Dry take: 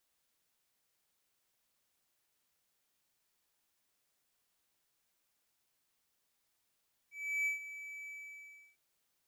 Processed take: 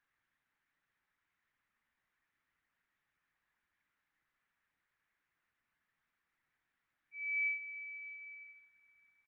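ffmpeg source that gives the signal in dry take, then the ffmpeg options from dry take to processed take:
-f lavfi -i "aevalsrc='0.0398*(1-4*abs(mod(2300*t+0.25,1)-0.5))':d=1.656:s=44100,afade=t=in:d=0.349,afade=t=out:st=0.349:d=0.128:silence=0.2,afade=t=out:st=0.97:d=0.686"
-filter_complex "[0:a]firequalizer=gain_entry='entry(310,0);entry(450,-23);entry(830,-1);entry(1800,9);entry(4100,-28);entry(6700,13);entry(11000,4)':delay=0.05:min_phase=1,asplit=2[a][b];[b]adelay=731,lowpass=f=4k:p=1,volume=-18.5dB,asplit=2[c][d];[d]adelay=731,lowpass=f=4k:p=1,volume=0.18[e];[a][c][e]amix=inputs=3:normalize=0" -ar 48000 -c:a libopus -b:a 8k

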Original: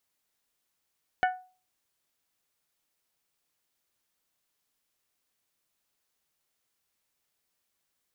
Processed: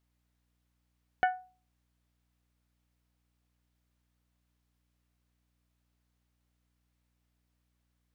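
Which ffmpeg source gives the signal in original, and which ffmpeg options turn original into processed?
-f lavfi -i "aevalsrc='0.106*pow(10,-3*t/0.37)*sin(2*PI*739*t)+0.0631*pow(10,-3*t/0.228)*sin(2*PI*1478*t)+0.0376*pow(10,-3*t/0.2)*sin(2*PI*1773.6*t)+0.0224*pow(10,-3*t/0.171)*sin(2*PI*2217*t)+0.0133*pow(10,-3*t/0.14)*sin(2*PI*2956*t)':d=0.89:s=44100"
-af "highshelf=f=4.2k:g=-9.5,aeval=exprs='val(0)+0.000158*(sin(2*PI*60*n/s)+sin(2*PI*2*60*n/s)/2+sin(2*PI*3*60*n/s)/3+sin(2*PI*4*60*n/s)/4+sin(2*PI*5*60*n/s)/5)':c=same"

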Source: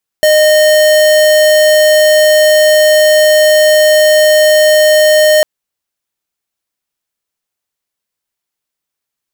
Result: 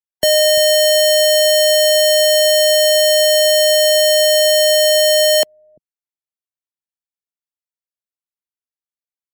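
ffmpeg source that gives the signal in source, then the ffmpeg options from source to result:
-f lavfi -i "aevalsrc='0.447*(2*lt(mod(614*t,1),0.5)-1)':d=5.2:s=44100"
-filter_complex "[0:a]afftdn=nr=22:nf=-29,acrossover=split=220|440|2500[a][b][c][d];[a]aecho=1:1:343:0.473[e];[c]asoftclip=type=tanh:threshold=-16dB[f];[e][b][f][d]amix=inputs=4:normalize=0"

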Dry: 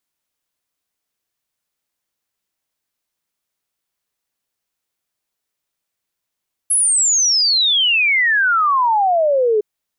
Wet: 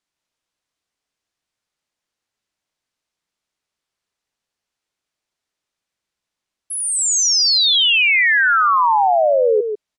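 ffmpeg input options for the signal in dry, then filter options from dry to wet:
-f lavfi -i "aevalsrc='0.251*clip(min(t,2.91-t)/0.01,0,1)*sin(2*PI*11000*2.91/log(410/11000)*(exp(log(410/11000)*t/2.91)-1))':d=2.91:s=44100"
-filter_complex "[0:a]lowpass=7.1k,asplit=2[a][b];[b]aecho=0:1:145:0.447[c];[a][c]amix=inputs=2:normalize=0"

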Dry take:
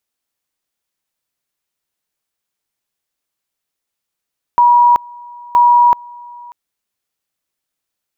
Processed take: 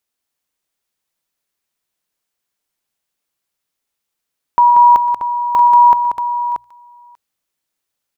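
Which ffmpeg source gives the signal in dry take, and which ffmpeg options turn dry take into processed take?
-f lavfi -i "aevalsrc='pow(10,(-5.5-25.5*gte(mod(t,0.97),0.38))/20)*sin(2*PI*963*t)':d=1.94:s=44100"
-filter_complex "[0:a]bandreject=f=60:t=h:w=6,bandreject=f=120:t=h:w=6,asplit=2[a][b];[b]aecho=0:1:122|185|632:0.133|0.473|0.376[c];[a][c]amix=inputs=2:normalize=0"

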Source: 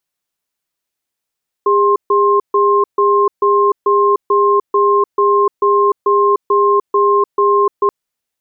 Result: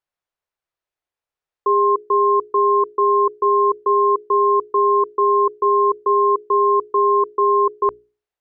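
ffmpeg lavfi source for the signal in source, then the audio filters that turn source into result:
-f lavfi -i "aevalsrc='0.266*(sin(2*PI*405*t)+sin(2*PI*1060*t))*clip(min(mod(t,0.44),0.3-mod(t,0.44))/0.005,0,1)':d=6.23:s=44100"
-af "lowpass=f=1.2k:p=1,equalizer=f=220:w=1.5:g=-14.5,bandreject=f=60:t=h:w=6,bandreject=f=120:t=h:w=6,bandreject=f=180:t=h:w=6,bandreject=f=240:t=h:w=6,bandreject=f=300:t=h:w=6,bandreject=f=360:t=h:w=6,bandreject=f=420:t=h:w=6"

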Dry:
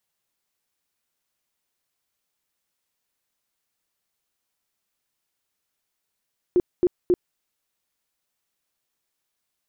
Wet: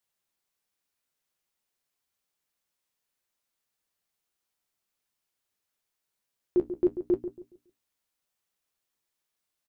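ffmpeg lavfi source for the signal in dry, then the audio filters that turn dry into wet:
-f lavfi -i "aevalsrc='0.2*sin(2*PI*357*mod(t,0.27))*lt(mod(t,0.27),14/357)':d=0.81:s=44100"
-filter_complex "[0:a]bandreject=f=60:t=h:w=6,bandreject=f=120:t=h:w=6,bandreject=f=180:t=h:w=6,bandreject=f=240:t=h:w=6,bandreject=f=300:t=h:w=6,flanger=delay=8.1:depth=7.6:regen=-50:speed=0.55:shape=triangular,asplit=2[a][b];[b]adelay=139,lowpass=f=960:p=1,volume=-10.5dB,asplit=2[c][d];[d]adelay=139,lowpass=f=960:p=1,volume=0.33,asplit=2[e][f];[f]adelay=139,lowpass=f=960:p=1,volume=0.33,asplit=2[g][h];[h]adelay=139,lowpass=f=960:p=1,volume=0.33[i];[c][e][g][i]amix=inputs=4:normalize=0[j];[a][j]amix=inputs=2:normalize=0"

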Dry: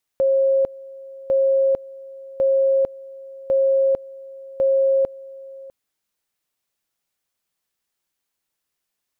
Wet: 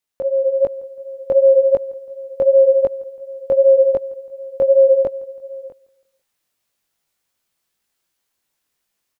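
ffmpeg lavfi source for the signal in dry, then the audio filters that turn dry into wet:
-f lavfi -i "aevalsrc='pow(10,(-14-21*gte(mod(t,1.1),0.45))/20)*sin(2*PI*540*t)':d=5.5:s=44100"
-af "dynaudnorm=f=380:g=3:m=8.5dB,flanger=delay=18.5:depth=3.2:speed=2.7,aecho=1:1:165|330|495:0.0668|0.0321|0.0154"

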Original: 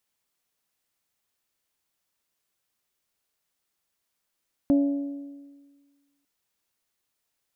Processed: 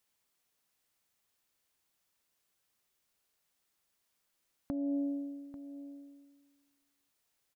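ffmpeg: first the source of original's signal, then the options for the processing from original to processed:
-f lavfi -i "aevalsrc='0.168*pow(10,-3*t/1.53)*sin(2*PI*282*t)+0.0447*pow(10,-3*t/1.243)*sin(2*PI*564*t)+0.0119*pow(10,-3*t/1.177)*sin(2*PI*676.8*t)+0.00316*pow(10,-3*t/1.1)*sin(2*PI*846*t)':d=1.55:s=44100"
-af "acompressor=threshold=-29dB:ratio=6,alimiter=limit=-23.5dB:level=0:latency=1:release=241,aecho=1:1:841:0.188"

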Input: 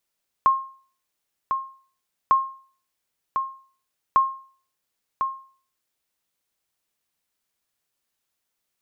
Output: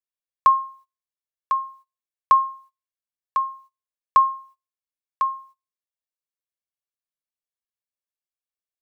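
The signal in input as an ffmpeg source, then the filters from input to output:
-f lavfi -i "aevalsrc='0.316*(sin(2*PI*1070*mod(t,1.85))*exp(-6.91*mod(t,1.85)/0.44)+0.447*sin(2*PI*1070*max(mod(t,1.85)-1.05,0))*exp(-6.91*max(mod(t,1.85)-1.05,0)/0.44))':d=5.55:s=44100"
-af "agate=range=-22dB:threshold=-51dB:ratio=16:detection=peak,aecho=1:1:1.8:0.65"

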